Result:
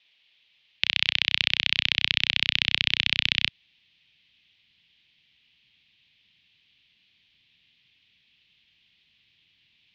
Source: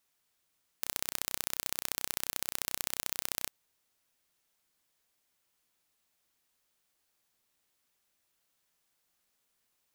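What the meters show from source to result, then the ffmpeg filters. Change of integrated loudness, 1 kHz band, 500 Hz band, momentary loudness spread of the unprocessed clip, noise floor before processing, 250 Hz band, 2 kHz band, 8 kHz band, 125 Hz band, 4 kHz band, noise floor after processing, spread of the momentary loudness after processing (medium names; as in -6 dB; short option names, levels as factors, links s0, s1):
+12.0 dB, +1.0 dB, 0.0 dB, 4 LU, -78 dBFS, +8.0 dB, +19.5 dB, -11.5 dB, +13.0 dB, +20.0 dB, -67 dBFS, 4 LU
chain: -af "aexciter=amount=13.8:drive=6.1:freq=2300,highpass=f=210:t=q:w=0.5412,highpass=f=210:t=q:w=1.307,lowpass=f=3400:t=q:w=0.5176,lowpass=f=3400:t=q:w=0.7071,lowpass=f=3400:t=q:w=1.932,afreqshift=-110,asubboost=boost=10.5:cutoff=170,volume=1.41"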